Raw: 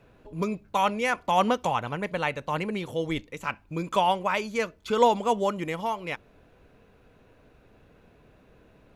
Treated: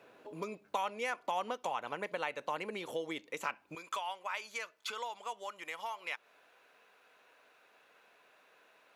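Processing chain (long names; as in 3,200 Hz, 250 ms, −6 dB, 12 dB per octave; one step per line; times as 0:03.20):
downward compressor 6 to 1, threshold −34 dBFS, peak gain reduction 18 dB
high-pass filter 380 Hz 12 dB per octave, from 0:03.75 950 Hz
level +1.5 dB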